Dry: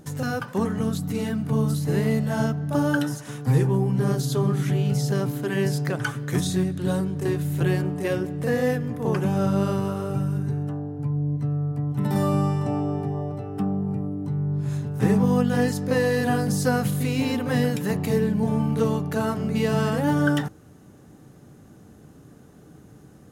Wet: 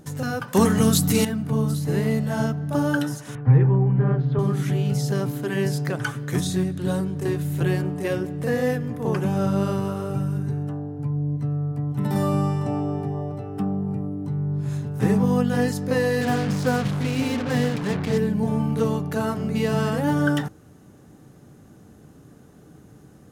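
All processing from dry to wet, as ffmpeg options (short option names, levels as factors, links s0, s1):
-filter_complex "[0:a]asettb=1/sr,asplit=3[s0][s1][s2];[s0]atrim=end=0.534[s3];[s1]atrim=start=0.53:end=1.25,asetpts=PTS-STARTPTS,afade=t=in:d=0.004:c=qsin,afade=t=out:st=0.716:d=0.004:c=qsin,highshelf=f=2900:g=11,acontrast=79[s4];[s2]atrim=start=1.246[s5];[s3][s4]acrossfade=d=0.004:c1=hsin:c2=qsin[s6];[s6][s5]acrossfade=d=0.004:c1=qsin:c2=hsin,asettb=1/sr,asplit=3[s7][s8][s9];[s7]atrim=end=3.354[s10];[s8]atrim=start=3.35:end=4.39,asetpts=PTS-STARTPTS,afade=t=in:d=0.004:c=qsin,afade=t=out:st=1.036:d=0.004:c=qsin,lowpass=f=2300:w=0.5412,lowpass=f=2300:w=1.3066,lowshelf=f=140:t=q:w=1.5:g=7[s11];[s9]atrim=start=4.386[s12];[s10][s11]acrossfade=d=0.004:c1=hsin:c2=qsin[s13];[s13][s12]acrossfade=d=0.004:c1=qsin:c2=hsin,asettb=1/sr,asplit=3[s14][s15][s16];[s14]atrim=end=16.214[s17];[s15]atrim=start=16.21:end=18.18,asetpts=PTS-STARTPTS,afade=t=in:d=0.004:c=qsin,afade=t=out:st=1.966:d=0.004:c=qsin,lowpass=3900,acrusher=bits=4:mix=0:aa=0.5[s18];[s16]atrim=start=18.176[s19];[s17][s18]acrossfade=d=0.004:c1=hsin:c2=qsin[s20];[s20][s19]acrossfade=d=0.004:c1=qsin:c2=hsin"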